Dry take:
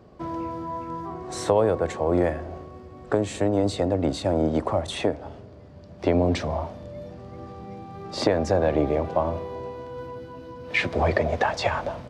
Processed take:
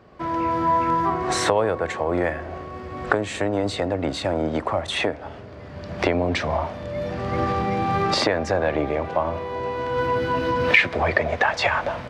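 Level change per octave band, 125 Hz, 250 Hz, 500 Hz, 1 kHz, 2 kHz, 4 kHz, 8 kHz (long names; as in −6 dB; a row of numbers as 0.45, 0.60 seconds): +0.5, 0.0, +1.0, +7.0, +8.5, +6.5, +4.5 decibels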